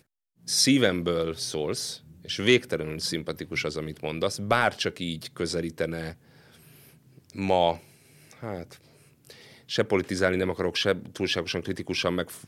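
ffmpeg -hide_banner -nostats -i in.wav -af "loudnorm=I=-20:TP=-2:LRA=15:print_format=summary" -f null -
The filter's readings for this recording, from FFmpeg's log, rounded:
Input Integrated:    -27.1 LUFS
Input True Peak:      -7.7 dBTP
Input LRA:             3.5 LU
Input Threshold:     -38.0 LUFS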